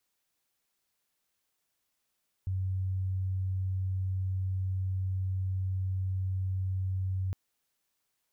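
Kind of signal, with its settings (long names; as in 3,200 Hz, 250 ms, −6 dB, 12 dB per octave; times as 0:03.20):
tone sine 94.2 Hz −28.5 dBFS 4.86 s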